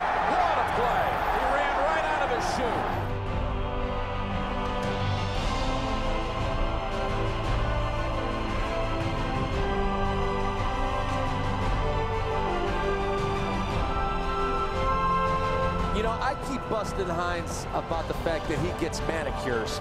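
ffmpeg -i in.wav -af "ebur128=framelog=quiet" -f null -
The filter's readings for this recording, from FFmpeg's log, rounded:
Integrated loudness:
  I:         -28.1 LUFS
  Threshold: -38.1 LUFS
Loudness range:
  LRA:         2.8 LU
  Threshold: -48.4 LUFS
  LRA low:   -29.5 LUFS
  LRA high:  -26.7 LUFS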